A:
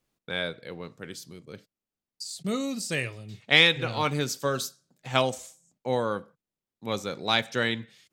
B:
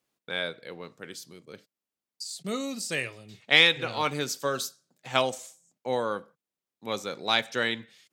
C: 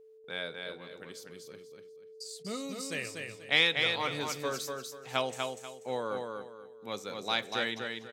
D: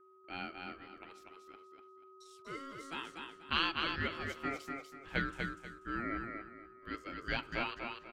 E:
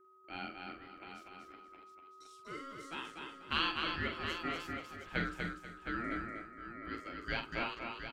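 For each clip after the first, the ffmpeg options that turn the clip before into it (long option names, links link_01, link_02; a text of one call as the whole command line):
ffmpeg -i in.wav -af "highpass=frequency=290:poles=1" out.wav
ffmpeg -i in.wav -filter_complex "[0:a]aeval=exprs='val(0)+0.00447*sin(2*PI*440*n/s)':channel_layout=same,asplit=2[link_01][link_02];[link_02]aecho=0:1:243|486|729|972:0.596|0.167|0.0467|0.0131[link_03];[link_01][link_03]amix=inputs=2:normalize=0,volume=-6.5dB" out.wav
ffmpeg -i in.wav -filter_complex "[0:a]acrossover=split=430 2200:gain=0.0794 1 0.126[link_01][link_02][link_03];[link_01][link_02][link_03]amix=inputs=3:normalize=0,aeval=exprs='val(0)*sin(2*PI*820*n/s)':channel_layout=same,volume=2dB" out.wav
ffmpeg -i in.wav -af "aecho=1:1:46|715:0.447|0.376,volume=-1.5dB" out.wav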